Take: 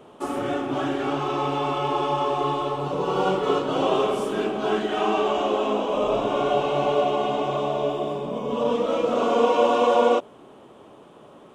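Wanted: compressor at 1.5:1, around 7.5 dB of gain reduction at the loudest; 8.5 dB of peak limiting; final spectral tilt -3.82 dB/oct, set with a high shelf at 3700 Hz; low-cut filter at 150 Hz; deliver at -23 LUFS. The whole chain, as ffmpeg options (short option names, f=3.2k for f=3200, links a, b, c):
-af "highpass=150,highshelf=f=3.7k:g=-3,acompressor=threshold=-36dB:ratio=1.5,volume=8.5dB,alimiter=limit=-14dB:level=0:latency=1"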